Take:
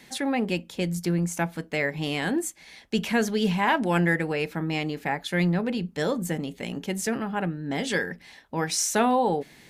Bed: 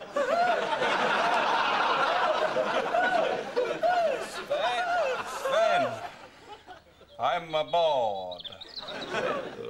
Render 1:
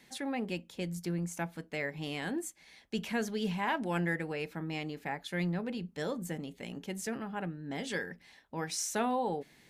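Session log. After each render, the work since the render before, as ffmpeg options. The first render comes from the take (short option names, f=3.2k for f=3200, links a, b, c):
-af "volume=-9.5dB"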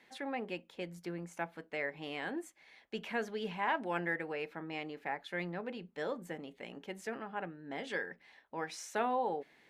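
-af "bass=f=250:g=-14,treble=f=4k:g=-14"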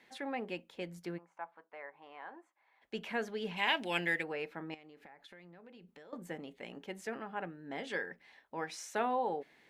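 -filter_complex "[0:a]asplit=3[a][b][c];[a]afade=t=out:st=1.17:d=0.02[d];[b]bandpass=f=990:t=q:w=2.6,afade=t=in:st=1.17:d=0.02,afade=t=out:st=2.81:d=0.02[e];[c]afade=t=in:st=2.81:d=0.02[f];[d][e][f]amix=inputs=3:normalize=0,asplit=3[g][h][i];[g]afade=t=out:st=3.56:d=0.02[j];[h]highshelf=f=2k:t=q:w=1.5:g=12.5,afade=t=in:st=3.56:d=0.02,afade=t=out:st=4.22:d=0.02[k];[i]afade=t=in:st=4.22:d=0.02[l];[j][k][l]amix=inputs=3:normalize=0,asettb=1/sr,asplit=3[m][n][o];[m]atrim=end=4.744[p];[n]atrim=start=4.74:end=6.13,asetpts=PTS-STARTPTS,afade=t=in:d=0.004:c=qsin,afade=t=out:st=1.386:d=0.004:c=qsin,acompressor=threshold=-52dB:ratio=8:attack=3.2:release=140:knee=1:detection=peak[q];[o]atrim=start=6.126[r];[p][q]acrossfade=d=0.004:c1=hsin:c2=qsin[s];[s][r]acrossfade=d=0.004:c1=qsin:c2=hsin"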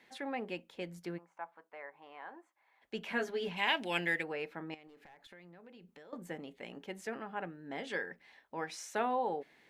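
-filter_complex "[0:a]asettb=1/sr,asplit=3[a][b][c];[a]atrim=end=3.074[d];[b]atrim=start=3.07:end=3.49,asetpts=PTS-STARTPTS,afade=t=in:d=0.004:c=qsin,afade=t=out:st=0.416:d=0.004:c=qsin,asplit=2[e][f];[f]adelay=12,volume=-2dB[g];[e][g]amix=inputs=2:normalize=0,atrim=end_sample=18522[h];[c]atrim=start=3.486[i];[d][h]acrossfade=d=0.004:c1=hsin:c2=qsin[j];[j][i]acrossfade=d=0.004:c1=qsin:c2=hsin,asettb=1/sr,asplit=3[k][l][m];[k]atrim=end=4.874[n];[l]atrim=start=4.87:end=5.31,asetpts=PTS-STARTPTS,afade=t=in:d=0.004:c=qsin,afade=t=out:st=0.436:d=0.004:c=qsin,aeval=exprs='clip(val(0),-1,0.00188)':c=same[o];[m]atrim=start=5.306[p];[n][o]acrossfade=d=0.004:c1=hsin:c2=qsin[q];[q][p]acrossfade=d=0.004:c1=qsin:c2=hsin"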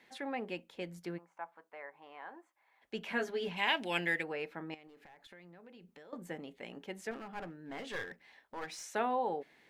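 -filter_complex "[0:a]asettb=1/sr,asplit=3[a][b][c];[a]atrim=end=7.114[d];[b]atrim=start=7.11:end=8.83,asetpts=PTS-STARTPTS,afade=t=in:d=0.004:c=qsin,afade=t=out:st=1.716:d=0.004:c=qsin,aeval=exprs='clip(val(0),-1,0.00794)':c=same[e];[c]atrim=start=8.826[f];[d][e]acrossfade=d=0.004:c1=hsin:c2=qsin[g];[g][f]acrossfade=d=0.004:c1=qsin:c2=hsin"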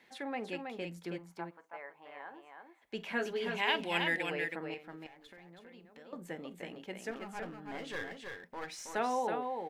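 -af "aecho=1:1:47|323:0.112|0.562"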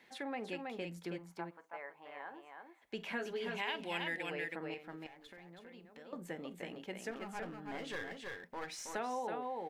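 -af "acompressor=threshold=-38dB:ratio=2.5"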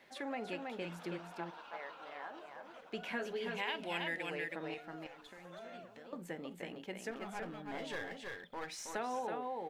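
-filter_complex "[1:a]volume=-27.5dB[a];[0:a][a]amix=inputs=2:normalize=0"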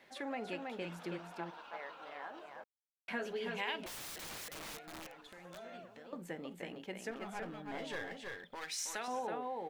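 -filter_complex "[0:a]asettb=1/sr,asplit=3[a][b][c];[a]atrim=end=3.864[d];[b]atrim=start=3.86:end=5.58,asetpts=PTS-STARTPTS,afade=t=in:d=0.004:c=qsin,afade=t=out:st=1.716:d=0.004:c=qsin,aeval=exprs='(mod(119*val(0)+1,2)-1)/119':c=same[e];[c]atrim=start=5.576[f];[d][e]acrossfade=d=0.004:c1=hsin:c2=qsin[g];[g][f]acrossfade=d=0.004:c1=qsin:c2=hsin,asettb=1/sr,asplit=3[h][i][j];[h]atrim=end=8.554[k];[i]atrim=start=8.55:end=9.08,asetpts=PTS-STARTPTS,afade=t=in:d=0.004:c=qsin,afade=t=out:st=0.526:d=0.004:c=qsin,tiltshelf=f=1.4k:g=-8[l];[j]atrim=start=9.076[m];[k][l]acrossfade=d=0.004:c1=hsin:c2=qsin[n];[n][m]acrossfade=d=0.004:c1=qsin:c2=hsin,asplit=3[o][p][q];[o]atrim=end=2.64,asetpts=PTS-STARTPTS,afade=t=out:st=2.636:d=0.004:c=hsin[r];[p]atrim=start=2.64:end=3.08,asetpts=PTS-STARTPTS,volume=0[s];[q]atrim=start=3.08,asetpts=PTS-STARTPTS,afade=t=in:d=0.004:c=hsin[t];[r][s][t]concat=n=3:v=0:a=1"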